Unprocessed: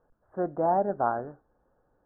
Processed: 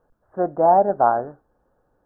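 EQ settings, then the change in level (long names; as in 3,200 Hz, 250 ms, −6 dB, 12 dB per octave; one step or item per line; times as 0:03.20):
dynamic equaliser 730 Hz, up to +7 dB, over −37 dBFS, Q 0.99
+3.5 dB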